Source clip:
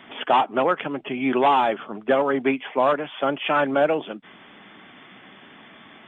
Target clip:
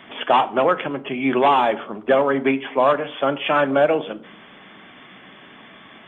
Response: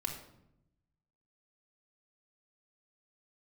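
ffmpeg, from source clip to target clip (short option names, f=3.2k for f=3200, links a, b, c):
-filter_complex "[0:a]asplit=2[a][b];[1:a]atrim=start_sample=2205,asetrate=70560,aresample=44100[c];[b][c]afir=irnorm=-1:irlink=0,volume=-4.5dB[d];[a][d]amix=inputs=2:normalize=0"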